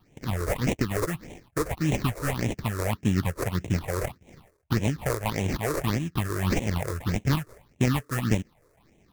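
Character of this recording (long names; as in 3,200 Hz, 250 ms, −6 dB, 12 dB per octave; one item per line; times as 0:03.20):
aliases and images of a low sample rate 1,500 Hz, jitter 20%
phaser sweep stages 6, 1.7 Hz, lowest notch 200–1,300 Hz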